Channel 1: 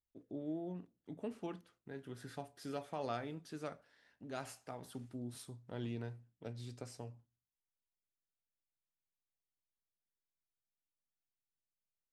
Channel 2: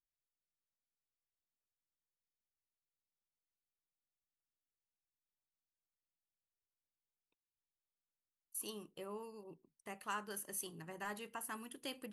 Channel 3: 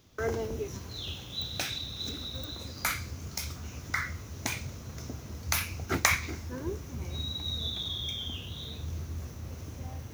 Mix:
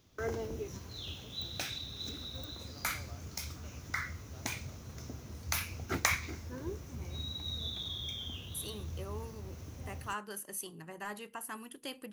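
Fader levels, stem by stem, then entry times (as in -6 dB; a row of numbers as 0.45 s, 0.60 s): -16.0 dB, +2.5 dB, -5.0 dB; 0.00 s, 0.00 s, 0.00 s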